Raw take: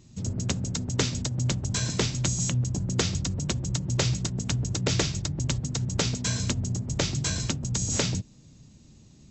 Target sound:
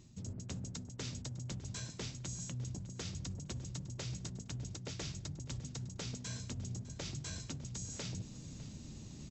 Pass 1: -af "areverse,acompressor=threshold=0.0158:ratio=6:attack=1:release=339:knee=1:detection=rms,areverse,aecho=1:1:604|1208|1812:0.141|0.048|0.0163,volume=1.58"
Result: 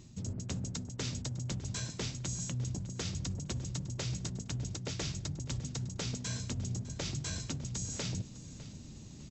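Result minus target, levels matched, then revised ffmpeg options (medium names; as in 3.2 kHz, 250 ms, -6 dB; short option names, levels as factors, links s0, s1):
compression: peak gain reduction -5.5 dB
-af "areverse,acompressor=threshold=0.0075:ratio=6:attack=1:release=339:knee=1:detection=rms,areverse,aecho=1:1:604|1208|1812:0.141|0.048|0.0163,volume=1.58"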